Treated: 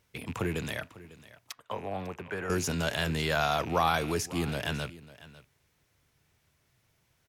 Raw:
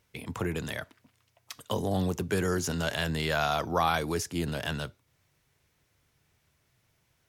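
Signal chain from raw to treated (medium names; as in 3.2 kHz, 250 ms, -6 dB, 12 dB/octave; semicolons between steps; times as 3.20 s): rattle on loud lows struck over -41 dBFS, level -33 dBFS; 1.52–2.50 s: three-band isolator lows -12 dB, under 580 Hz, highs -20 dB, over 2.3 kHz; on a send: delay 549 ms -18.5 dB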